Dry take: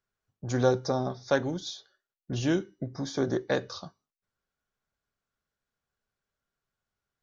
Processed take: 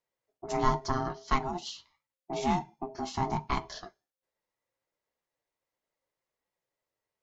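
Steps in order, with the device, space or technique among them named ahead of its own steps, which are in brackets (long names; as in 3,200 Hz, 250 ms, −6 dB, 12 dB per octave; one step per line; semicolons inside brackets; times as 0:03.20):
alien voice (ring modulation 530 Hz; flanger 0.78 Hz, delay 4 ms, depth 6.1 ms, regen −45%)
level +4.5 dB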